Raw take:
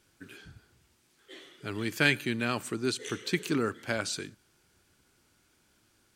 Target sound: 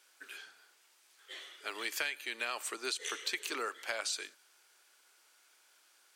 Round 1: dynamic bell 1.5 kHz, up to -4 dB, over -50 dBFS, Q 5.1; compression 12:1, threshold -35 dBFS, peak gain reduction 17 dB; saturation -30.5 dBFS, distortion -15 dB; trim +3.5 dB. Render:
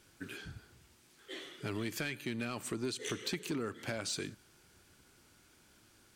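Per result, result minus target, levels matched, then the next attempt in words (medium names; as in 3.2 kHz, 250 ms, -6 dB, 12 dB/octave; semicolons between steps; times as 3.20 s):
saturation: distortion +15 dB; 1 kHz band -3.5 dB
dynamic bell 1.5 kHz, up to -4 dB, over -50 dBFS, Q 5.1; compression 12:1, threshold -35 dBFS, peak gain reduction 17 dB; saturation -19.5 dBFS, distortion -31 dB; trim +3.5 dB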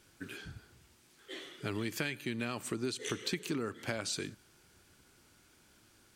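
1 kHz band -3.5 dB
dynamic bell 1.5 kHz, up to -4 dB, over -50 dBFS, Q 5.1; Bessel high-pass 760 Hz, order 4; compression 12:1, threshold -35 dBFS, peak gain reduction 15 dB; saturation -19.5 dBFS, distortion -30 dB; trim +3.5 dB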